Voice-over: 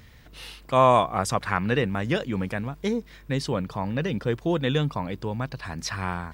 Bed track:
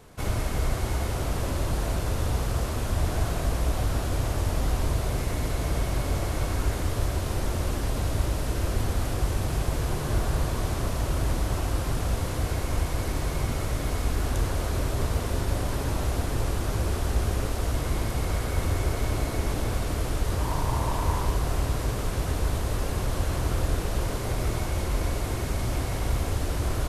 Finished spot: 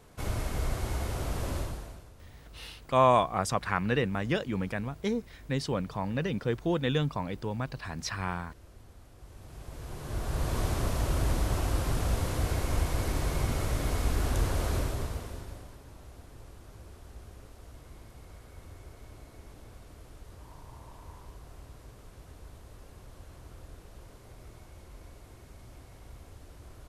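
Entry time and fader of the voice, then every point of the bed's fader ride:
2.20 s, −4.0 dB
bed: 0:01.58 −5 dB
0:02.13 −26.5 dB
0:09.14 −26.5 dB
0:10.57 −2 dB
0:14.75 −2 dB
0:15.81 −22.5 dB

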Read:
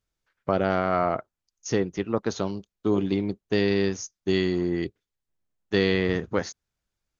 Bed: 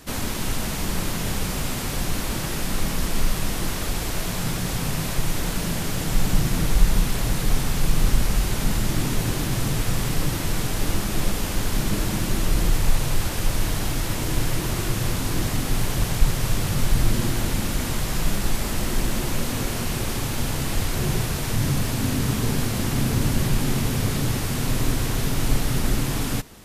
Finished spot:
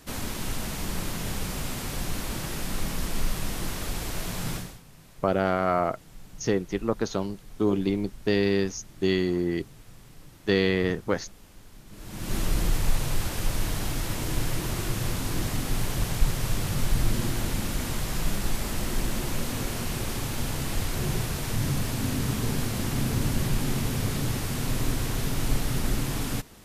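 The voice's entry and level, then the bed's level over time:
4.75 s, −0.5 dB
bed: 0:04.56 −5.5 dB
0:04.83 −26 dB
0:11.86 −26 dB
0:12.35 −4.5 dB

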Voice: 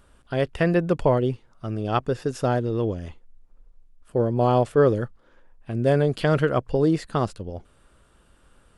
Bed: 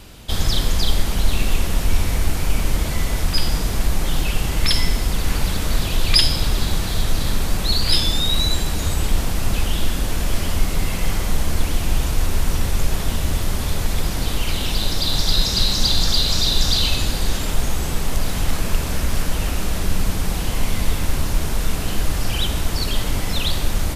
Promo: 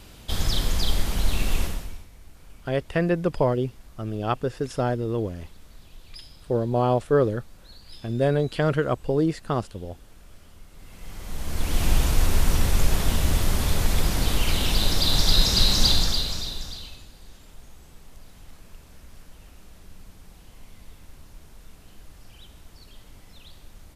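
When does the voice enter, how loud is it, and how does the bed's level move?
2.35 s, −2.0 dB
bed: 0:01.64 −5 dB
0:02.09 −29 dB
0:10.69 −29 dB
0:11.83 −1 dB
0:15.89 −1 dB
0:17.09 −26.5 dB

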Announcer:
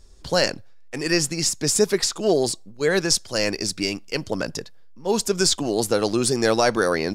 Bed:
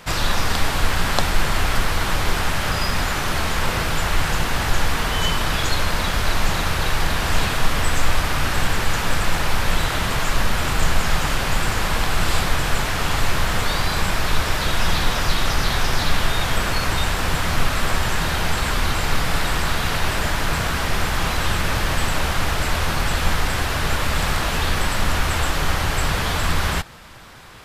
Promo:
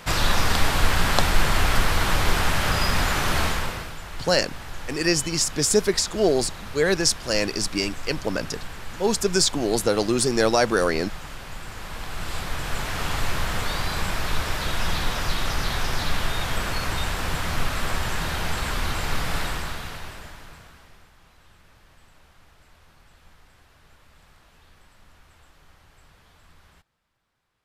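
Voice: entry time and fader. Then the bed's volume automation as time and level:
3.95 s, −0.5 dB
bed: 0:03.45 −0.5 dB
0:03.98 −16.5 dB
0:11.64 −16.5 dB
0:12.99 −5.5 dB
0:19.42 −5.5 dB
0:21.16 −34 dB

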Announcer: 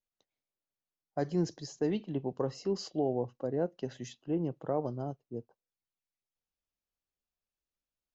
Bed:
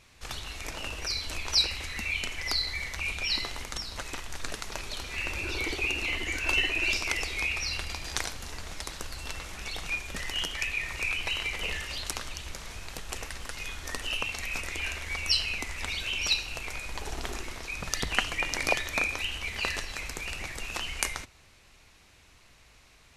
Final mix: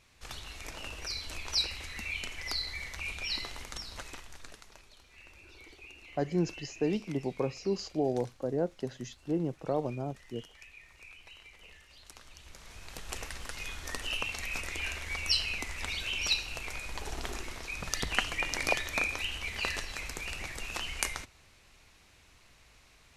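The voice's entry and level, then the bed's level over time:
5.00 s, +1.0 dB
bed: 0:03.99 −5.5 dB
0:04.95 −21.5 dB
0:11.89 −21.5 dB
0:13.10 −2.5 dB

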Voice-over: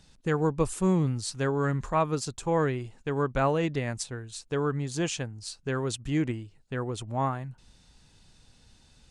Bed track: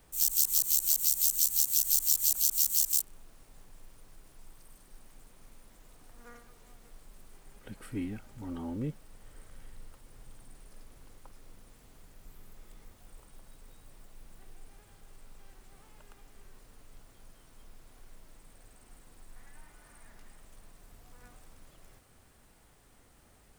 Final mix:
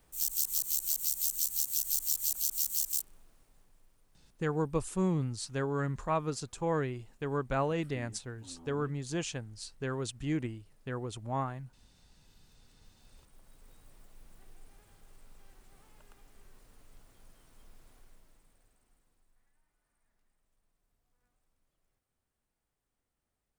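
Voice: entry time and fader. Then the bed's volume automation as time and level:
4.15 s, −5.5 dB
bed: 0:03.05 −5 dB
0:03.98 −14 dB
0:12.45 −14 dB
0:13.72 −3.5 dB
0:17.89 −3.5 dB
0:19.61 −24.5 dB

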